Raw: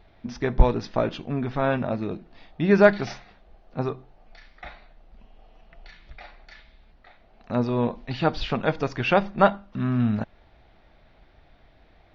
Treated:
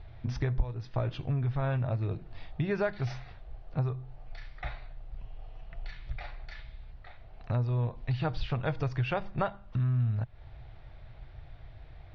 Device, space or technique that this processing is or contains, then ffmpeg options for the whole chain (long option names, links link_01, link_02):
jukebox: -af "lowpass=5500,lowshelf=frequency=160:width_type=q:width=3:gain=8.5,acompressor=threshold=-29dB:ratio=4"